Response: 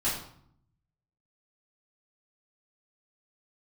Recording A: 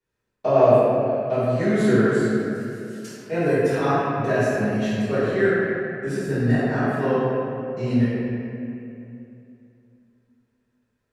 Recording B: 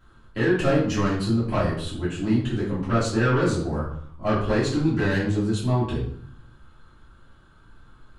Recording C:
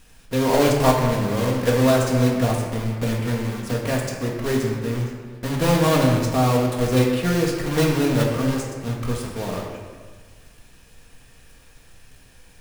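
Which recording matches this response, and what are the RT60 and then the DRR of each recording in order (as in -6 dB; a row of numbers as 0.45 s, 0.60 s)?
B; 2.8 s, 0.65 s, 1.5 s; -17.0 dB, -11.5 dB, -1.5 dB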